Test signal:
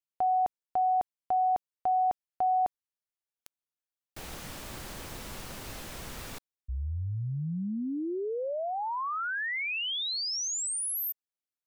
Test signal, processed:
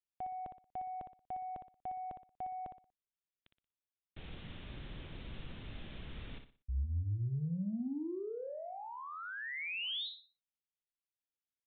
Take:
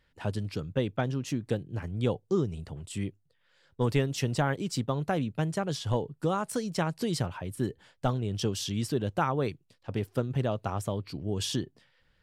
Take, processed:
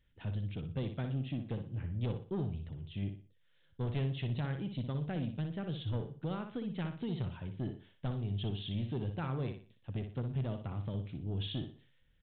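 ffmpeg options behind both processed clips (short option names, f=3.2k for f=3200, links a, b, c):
-af "equalizer=f=960:w=0.43:g=-13,aresample=8000,asoftclip=type=tanh:threshold=-29dB,aresample=44100,aecho=1:1:60|120|180|240:0.422|0.139|0.0459|0.0152,volume=-1dB"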